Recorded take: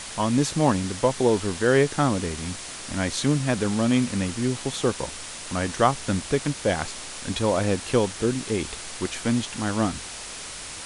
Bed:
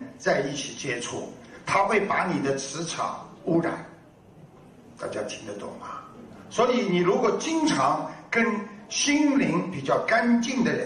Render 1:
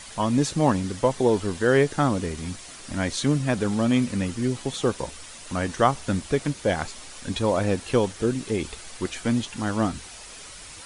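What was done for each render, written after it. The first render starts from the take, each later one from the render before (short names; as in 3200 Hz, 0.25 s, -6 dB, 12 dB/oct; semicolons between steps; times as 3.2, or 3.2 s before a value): denoiser 8 dB, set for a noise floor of -37 dBFS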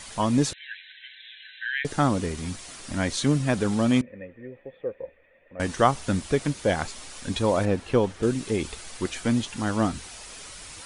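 0.53–1.85 brick-wall FIR band-pass 1500–4100 Hz; 4.01–5.6 vocal tract filter e; 7.65–8.23 high shelf 4000 Hz -12 dB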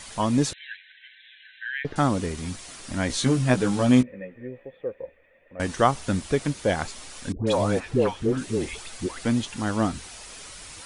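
0.76–1.96 air absorption 290 m; 3.08–4.67 doubler 16 ms -3 dB; 7.32–9.25 dispersion highs, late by 0.15 s, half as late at 900 Hz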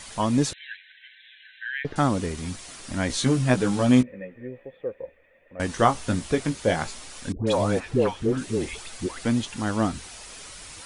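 5.74–6.98 doubler 18 ms -7 dB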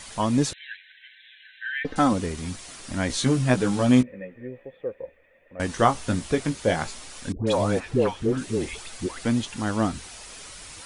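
1.64–2.13 comb 3.9 ms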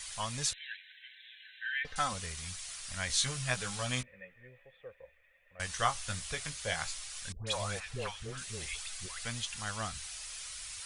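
passive tone stack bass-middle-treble 10-0-10; notch 910 Hz, Q 15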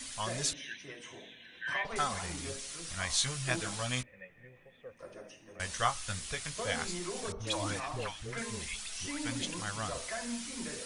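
add bed -18.5 dB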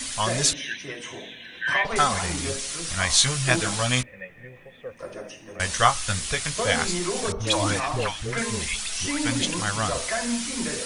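gain +11.5 dB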